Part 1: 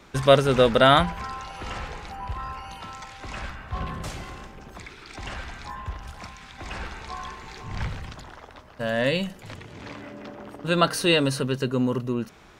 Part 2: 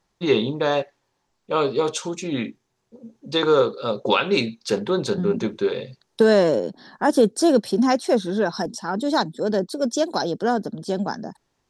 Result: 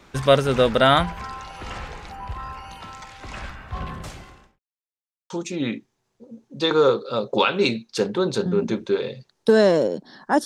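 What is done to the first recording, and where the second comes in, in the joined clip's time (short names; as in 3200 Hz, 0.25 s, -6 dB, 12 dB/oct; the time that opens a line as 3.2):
part 1
3.92–4.59 fade out linear
4.59–5.3 mute
5.3 switch to part 2 from 2.02 s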